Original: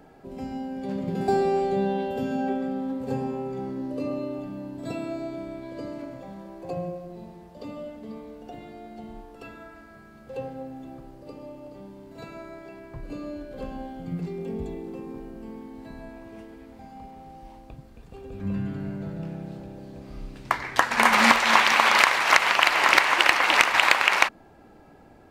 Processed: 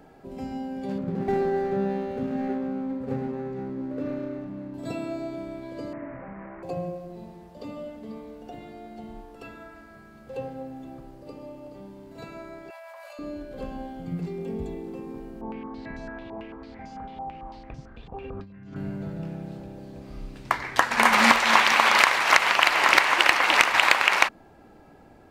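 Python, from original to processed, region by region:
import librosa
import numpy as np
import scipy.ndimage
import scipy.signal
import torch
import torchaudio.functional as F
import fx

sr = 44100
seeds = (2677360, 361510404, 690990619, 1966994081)

y = fx.chain(x, sr, fx.median_filter(points=41),
    fx.high_shelf(hz=2300.0, db=-7.5),
    fx.resample_linear(factor=2), at=(0.98, 4.74))
y = fx.chain(y, sr, fx.delta_mod(bps=16000, step_db=-36.0),
    fx.steep_lowpass(hz=2100.0, slope=48),
    fx.peak_eq(hz=360.0, db=-3.5, octaves=0.27), at=(5.93, 6.63))
y = fx.chain(y, sr, fx.cheby1_highpass(hz=560.0, order=8),
    fx.peak_eq(hz=12000.0, db=5.0, octaves=0.61),
    fx.env_flatten(amount_pct=100), at=(12.7, 13.19))
y = fx.chain(y, sr, fx.over_compress(threshold_db=-38.0, ratio=-1.0),
    fx.filter_held_lowpass(hz=9.0, low_hz=890.0, high_hz=5900.0), at=(15.41, 18.76))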